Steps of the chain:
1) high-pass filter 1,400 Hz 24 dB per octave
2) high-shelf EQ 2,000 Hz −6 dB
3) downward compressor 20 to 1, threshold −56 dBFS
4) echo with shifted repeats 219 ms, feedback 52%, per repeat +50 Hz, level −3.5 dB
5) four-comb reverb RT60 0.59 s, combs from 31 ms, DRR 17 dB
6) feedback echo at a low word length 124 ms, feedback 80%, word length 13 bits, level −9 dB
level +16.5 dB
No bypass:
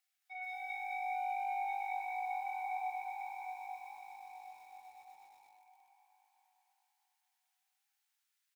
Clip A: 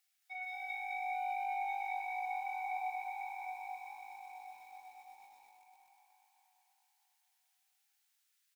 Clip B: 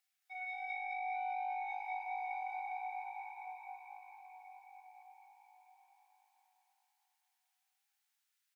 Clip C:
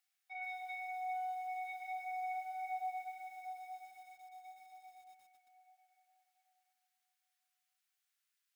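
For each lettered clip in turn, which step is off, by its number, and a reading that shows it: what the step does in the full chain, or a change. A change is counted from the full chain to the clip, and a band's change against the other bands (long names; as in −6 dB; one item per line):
2, change in momentary loudness spread −1 LU
6, change in integrated loudness −1.5 LU
4, change in momentary loudness spread −2 LU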